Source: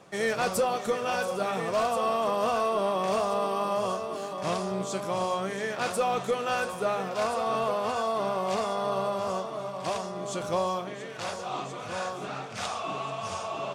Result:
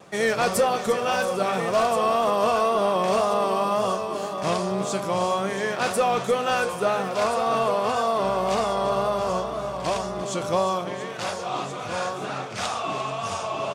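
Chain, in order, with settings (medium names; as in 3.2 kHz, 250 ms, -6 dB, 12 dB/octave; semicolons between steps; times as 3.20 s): delay 349 ms -13.5 dB; vibrato 1.9 Hz 40 cents; 8.23–10.22 s: mains buzz 60 Hz, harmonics 29, -48 dBFS -4 dB/octave; trim +5 dB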